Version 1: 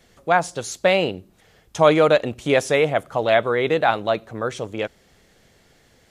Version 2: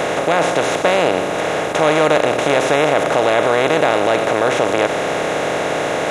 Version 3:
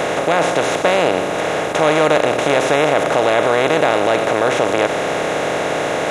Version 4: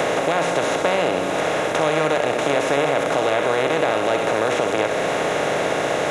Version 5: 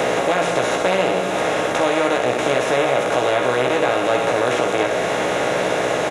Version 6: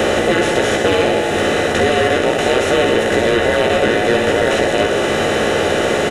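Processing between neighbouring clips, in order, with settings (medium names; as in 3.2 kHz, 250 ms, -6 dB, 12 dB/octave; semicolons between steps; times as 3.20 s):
spectral levelling over time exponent 0.2; in parallel at 0 dB: peak limiter -2.5 dBFS, peak gain reduction 8 dB; on the sum: trim -9.5 dB
no audible change
flutter echo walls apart 11 m, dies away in 0.48 s; three bands compressed up and down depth 70%; trim -5.5 dB
doubling 16 ms -4 dB
every band turned upside down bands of 1 kHz; in parallel at -4 dB: hard clipper -14 dBFS, distortion -15 dB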